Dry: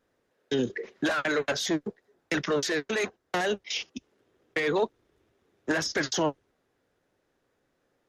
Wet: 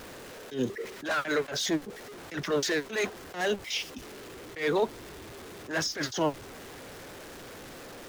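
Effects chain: zero-crossing step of -38 dBFS; attack slew limiter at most 170 dB/s; gain -1 dB

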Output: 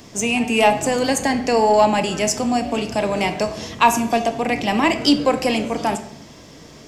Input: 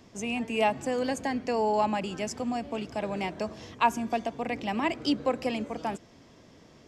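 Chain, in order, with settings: high shelf 4800 Hz +10 dB; in parallel at -7 dB: soft clip -24.5 dBFS, distortion -11 dB; on the sum: shoebox room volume 180 m³, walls mixed, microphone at 0.38 m; gain +7.5 dB

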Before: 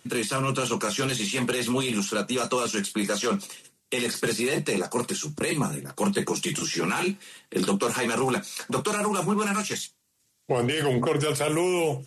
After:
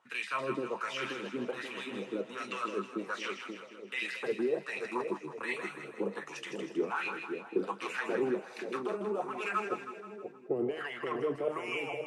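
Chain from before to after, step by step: wah 1.3 Hz 310–2400 Hz, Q 3.5; on a send: split-band echo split 710 Hz, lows 0.529 s, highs 0.159 s, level -7 dB

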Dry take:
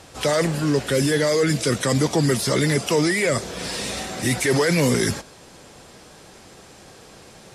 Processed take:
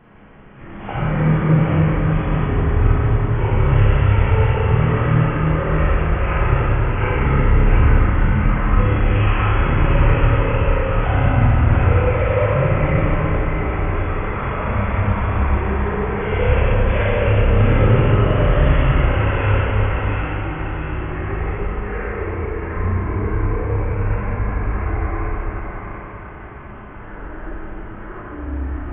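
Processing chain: high shelf 8200 Hz -7 dB; wide varispeed 0.261×; echoes that change speed 0.594 s, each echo -4 st, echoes 2, each echo -6 dB; split-band echo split 730 Hz, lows 0.29 s, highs 0.696 s, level -4 dB; Schroeder reverb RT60 2.2 s, combs from 30 ms, DRR -7 dB; gain -4.5 dB

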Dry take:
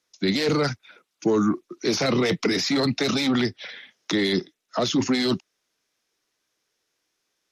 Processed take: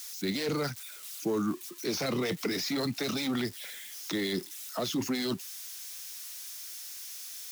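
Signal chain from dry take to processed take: switching spikes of -26.5 dBFS; gain -9 dB

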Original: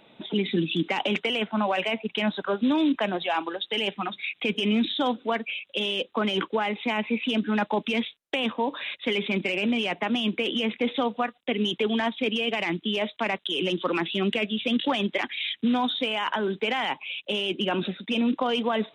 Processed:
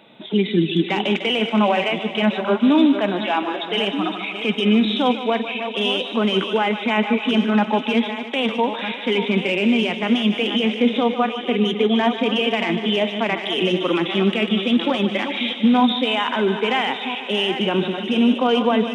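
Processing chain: reverse delay 0.686 s, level -10 dB; HPF 96 Hz; thinning echo 0.15 s, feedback 77%, high-pass 190 Hz, level -13 dB; harmonic-percussive split harmonic +8 dB

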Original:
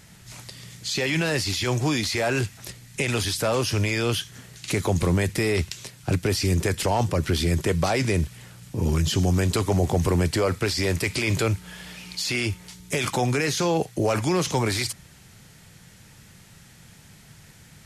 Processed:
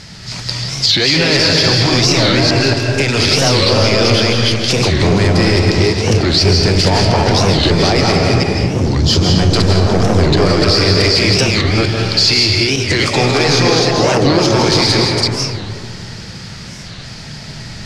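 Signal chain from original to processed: reverse delay 0.228 s, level -2 dB; air absorption 88 m; in parallel at 0 dB: compressor, threshold -35 dBFS, peak gain reduction 18.5 dB; on the sum: soft clip -18 dBFS, distortion -13 dB; bell 4800 Hz +13.5 dB 0.57 oct; reverb RT60 2.2 s, pre-delay 0.12 s, DRR 0 dB; maximiser +9.5 dB; record warp 45 rpm, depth 250 cents; gain -1 dB

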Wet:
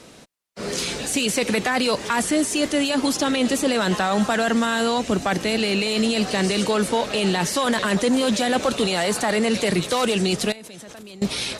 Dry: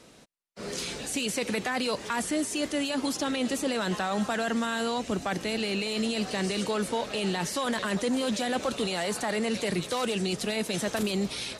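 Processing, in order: 10.52–11.22 level quantiser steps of 24 dB; added harmonics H 4 -35 dB, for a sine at -17.5 dBFS; gain +8 dB

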